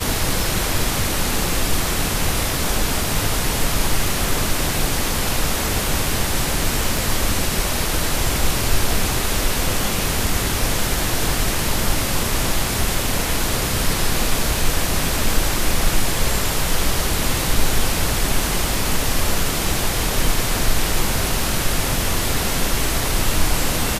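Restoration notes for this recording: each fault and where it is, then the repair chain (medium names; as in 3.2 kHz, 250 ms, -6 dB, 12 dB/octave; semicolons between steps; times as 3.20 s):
6.97 s: pop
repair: de-click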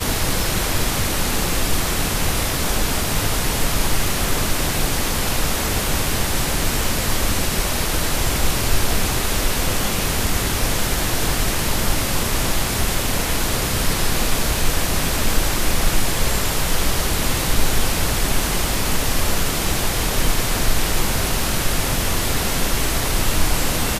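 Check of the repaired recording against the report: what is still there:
6.97 s: pop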